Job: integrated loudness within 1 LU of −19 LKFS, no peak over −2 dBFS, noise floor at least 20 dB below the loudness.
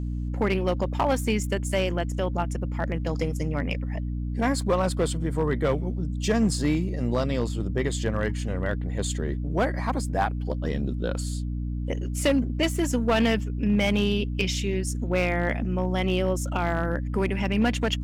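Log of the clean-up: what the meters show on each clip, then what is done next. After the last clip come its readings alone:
share of clipped samples 0.7%; peaks flattened at −15.5 dBFS; mains hum 60 Hz; hum harmonics up to 300 Hz; level of the hum −27 dBFS; integrated loudness −26.5 LKFS; sample peak −15.5 dBFS; target loudness −19.0 LKFS
→ clipped peaks rebuilt −15.5 dBFS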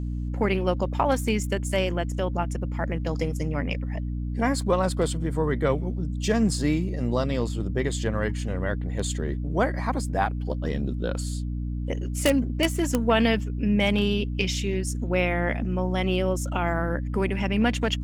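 share of clipped samples 0.0%; mains hum 60 Hz; hum harmonics up to 300 Hz; level of the hum −27 dBFS
→ hum removal 60 Hz, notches 5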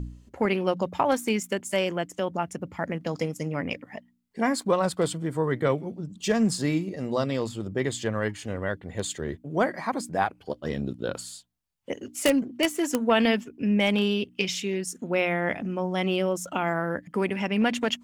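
mains hum none found; integrated loudness −27.5 LKFS; sample peak −6.0 dBFS; target loudness −19.0 LKFS
→ level +8.5 dB
brickwall limiter −2 dBFS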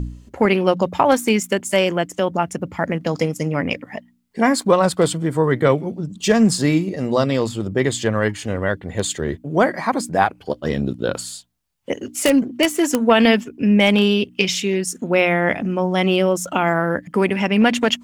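integrated loudness −19.0 LKFS; sample peak −2.0 dBFS; background noise floor −51 dBFS

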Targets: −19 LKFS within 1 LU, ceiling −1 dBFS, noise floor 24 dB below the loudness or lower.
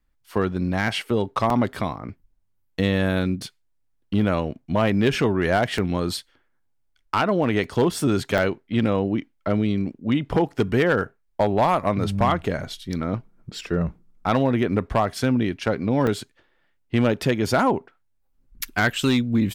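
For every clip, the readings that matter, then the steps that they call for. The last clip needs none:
share of clipped samples 0.5%; peaks flattened at −12.0 dBFS; number of dropouts 5; longest dropout 2.8 ms; integrated loudness −23.5 LKFS; sample peak −12.0 dBFS; target loudness −19.0 LKFS
→ clipped peaks rebuilt −12 dBFS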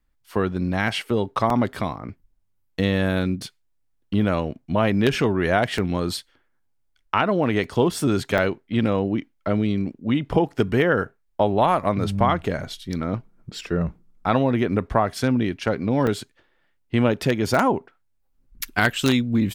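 share of clipped samples 0.0%; number of dropouts 5; longest dropout 2.8 ms
→ repair the gap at 0:01.50/0:05.78/0:07.64/0:08.38/0:16.07, 2.8 ms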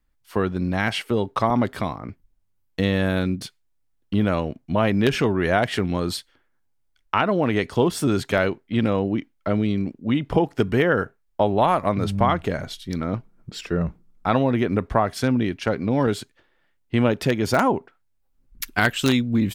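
number of dropouts 0; integrated loudness −23.0 LKFS; sample peak −3.0 dBFS; target loudness −19.0 LKFS
→ level +4 dB
brickwall limiter −1 dBFS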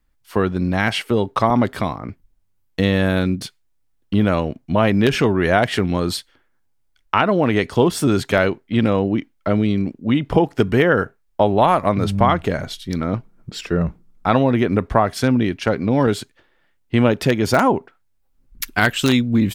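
integrated loudness −19.0 LKFS; sample peak −1.0 dBFS; background noise floor −63 dBFS

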